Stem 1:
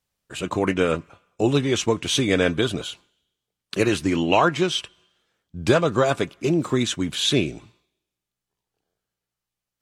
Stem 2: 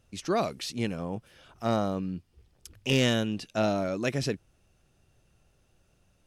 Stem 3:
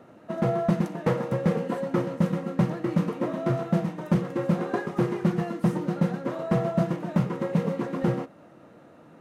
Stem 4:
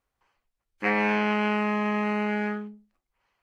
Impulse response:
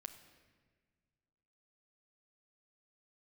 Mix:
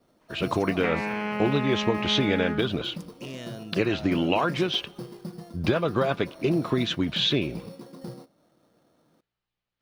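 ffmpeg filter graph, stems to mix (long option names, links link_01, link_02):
-filter_complex "[0:a]lowpass=frequency=4300:width=0.5412,lowpass=frequency=4300:width=1.3066,acompressor=threshold=-22dB:ratio=5,volume=1.5dB[link_01];[1:a]alimiter=level_in=1dB:limit=-24dB:level=0:latency=1,volume=-1dB,adelay=350,volume=-7dB[link_02];[2:a]adynamicequalizer=threshold=0.00447:dfrequency=1800:dqfactor=0.92:tfrequency=1800:tqfactor=0.92:attack=5:release=100:ratio=0.375:range=2:mode=cutabove:tftype=bell,acrusher=samples=9:mix=1:aa=0.000001,volume=-14dB[link_03];[3:a]volume=2dB[link_04];[link_02][link_03][link_04]amix=inputs=3:normalize=0,acompressor=threshold=-27dB:ratio=4,volume=0dB[link_05];[link_01][link_05]amix=inputs=2:normalize=0"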